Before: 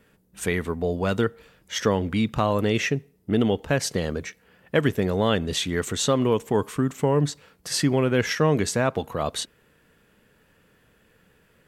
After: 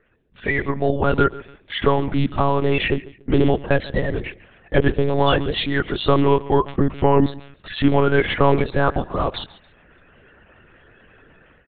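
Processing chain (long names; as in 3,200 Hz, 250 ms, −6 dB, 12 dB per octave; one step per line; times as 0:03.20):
spectral magnitudes quantised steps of 30 dB
0:03.95–0:04.82: mains-hum notches 60/120/180/240/300/360/420/480 Hz
0:06.26–0:06.84: noise gate −33 dBFS, range −10 dB
automatic gain control gain up to 12.5 dB
on a send: repeating echo 141 ms, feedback 28%, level −19 dB
on the sum: one-pitch LPC vocoder at 8 kHz 140 Hz
level −2 dB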